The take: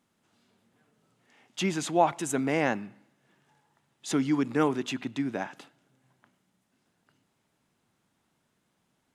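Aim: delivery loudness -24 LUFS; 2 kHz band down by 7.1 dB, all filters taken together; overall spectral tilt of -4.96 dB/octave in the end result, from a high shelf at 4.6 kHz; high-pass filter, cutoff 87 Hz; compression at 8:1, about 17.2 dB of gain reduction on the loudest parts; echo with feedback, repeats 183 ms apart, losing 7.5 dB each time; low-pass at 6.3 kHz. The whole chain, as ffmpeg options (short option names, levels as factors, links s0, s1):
-af "highpass=87,lowpass=6300,equalizer=f=2000:t=o:g=-8,highshelf=f=4600:g=-6,acompressor=threshold=0.0158:ratio=8,aecho=1:1:183|366|549|732|915:0.422|0.177|0.0744|0.0312|0.0131,volume=7.08"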